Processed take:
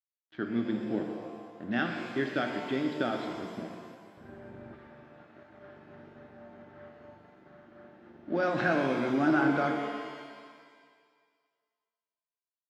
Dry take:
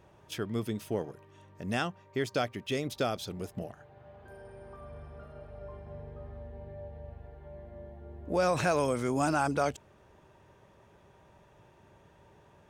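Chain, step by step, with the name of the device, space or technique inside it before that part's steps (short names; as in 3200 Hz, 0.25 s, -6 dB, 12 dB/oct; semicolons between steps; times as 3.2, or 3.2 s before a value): 4.17–4.74 RIAA curve playback; low-pass opened by the level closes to 1300 Hz, open at -25.5 dBFS; blown loudspeaker (crossover distortion -48 dBFS; speaker cabinet 180–3800 Hz, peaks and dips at 220 Hz +4 dB, 310 Hz +9 dB, 470 Hz -8 dB, 1000 Hz -9 dB, 1600 Hz +7 dB, 2500 Hz -7 dB); shimmer reverb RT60 1.8 s, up +7 st, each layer -8 dB, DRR 3 dB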